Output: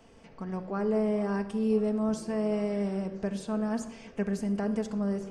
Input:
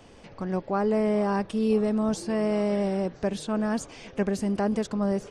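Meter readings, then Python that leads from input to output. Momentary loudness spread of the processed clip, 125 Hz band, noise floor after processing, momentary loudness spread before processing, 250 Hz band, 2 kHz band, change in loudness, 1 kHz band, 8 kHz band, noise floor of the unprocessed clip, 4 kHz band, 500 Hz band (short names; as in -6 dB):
8 LU, -3.0 dB, -54 dBFS, 7 LU, -3.0 dB, -5.5 dB, -3.5 dB, -7.5 dB, -6.0 dB, -50 dBFS, -7.5 dB, -4.0 dB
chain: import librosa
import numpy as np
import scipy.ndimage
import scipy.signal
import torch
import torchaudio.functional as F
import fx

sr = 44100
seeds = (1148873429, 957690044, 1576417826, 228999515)

y = fx.peak_eq(x, sr, hz=3800.0, db=-4.5, octaves=0.44)
y = fx.room_shoebox(y, sr, seeds[0], volume_m3=3800.0, walls='furnished', distance_m=1.6)
y = y * librosa.db_to_amplitude(-6.5)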